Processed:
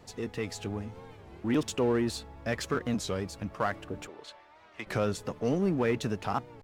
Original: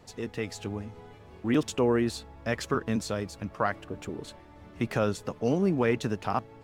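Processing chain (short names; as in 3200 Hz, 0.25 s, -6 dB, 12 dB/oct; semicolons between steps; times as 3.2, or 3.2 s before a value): 4.07–4.88 three-band isolator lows -22 dB, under 540 Hz, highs -14 dB, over 6100 Hz; in parallel at -3 dB: overloaded stage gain 32 dB; on the sum: record warp 33 1/3 rpm, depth 160 cents; gain -4 dB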